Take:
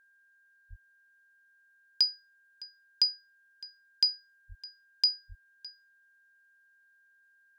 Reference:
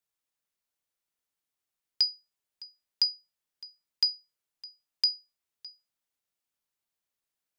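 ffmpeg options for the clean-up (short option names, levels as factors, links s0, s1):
-filter_complex "[0:a]bandreject=f=1600:w=30,asplit=3[s0][s1][s2];[s0]afade=t=out:st=0.69:d=0.02[s3];[s1]highpass=f=140:w=0.5412,highpass=f=140:w=1.3066,afade=t=in:st=0.69:d=0.02,afade=t=out:st=0.81:d=0.02[s4];[s2]afade=t=in:st=0.81:d=0.02[s5];[s3][s4][s5]amix=inputs=3:normalize=0,asplit=3[s6][s7][s8];[s6]afade=t=out:st=4.48:d=0.02[s9];[s7]highpass=f=140:w=0.5412,highpass=f=140:w=1.3066,afade=t=in:st=4.48:d=0.02,afade=t=out:st=4.6:d=0.02[s10];[s8]afade=t=in:st=4.6:d=0.02[s11];[s9][s10][s11]amix=inputs=3:normalize=0,asplit=3[s12][s13][s14];[s12]afade=t=out:st=5.28:d=0.02[s15];[s13]highpass=f=140:w=0.5412,highpass=f=140:w=1.3066,afade=t=in:st=5.28:d=0.02,afade=t=out:st=5.4:d=0.02[s16];[s14]afade=t=in:st=5.4:d=0.02[s17];[s15][s16][s17]amix=inputs=3:normalize=0"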